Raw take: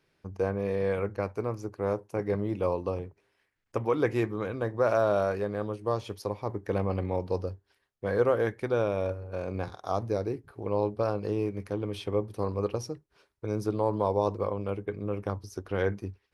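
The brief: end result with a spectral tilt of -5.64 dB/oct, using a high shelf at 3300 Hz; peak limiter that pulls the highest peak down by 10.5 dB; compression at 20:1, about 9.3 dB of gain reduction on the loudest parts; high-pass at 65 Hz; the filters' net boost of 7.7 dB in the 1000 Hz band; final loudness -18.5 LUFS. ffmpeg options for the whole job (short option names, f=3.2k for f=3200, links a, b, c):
-af "highpass=65,equalizer=f=1k:t=o:g=9,highshelf=f=3.3k:g=7.5,acompressor=threshold=-25dB:ratio=20,volume=17dB,alimiter=limit=-5dB:level=0:latency=1"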